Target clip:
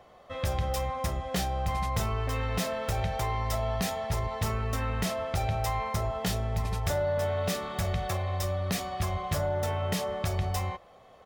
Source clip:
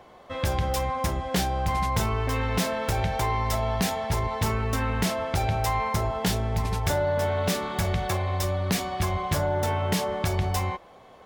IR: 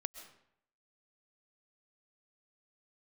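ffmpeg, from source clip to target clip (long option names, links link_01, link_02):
-filter_complex "[0:a]aecho=1:1:1.6:0.33[link_01];[1:a]atrim=start_sample=2205,atrim=end_sample=4410[link_02];[link_01][link_02]afir=irnorm=-1:irlink=0,volume=-3dB"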